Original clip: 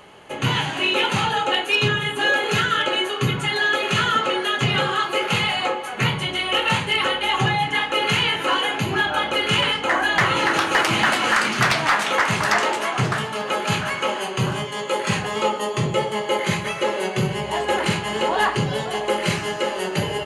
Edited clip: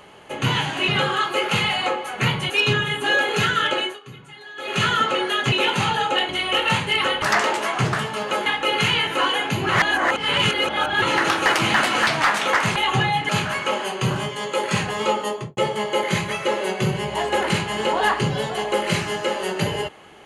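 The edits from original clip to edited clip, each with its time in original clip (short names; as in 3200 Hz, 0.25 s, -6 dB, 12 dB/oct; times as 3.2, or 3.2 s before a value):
0.88–1.65 swap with 4.67–6.29
2.91–3.95 dip -19.5 dB, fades 0.24 s
7.22–7.75 swap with 12.41–13.65
8.98–10.31 reverse
11.36–11.72 cut
15.62–15.93 studio fade out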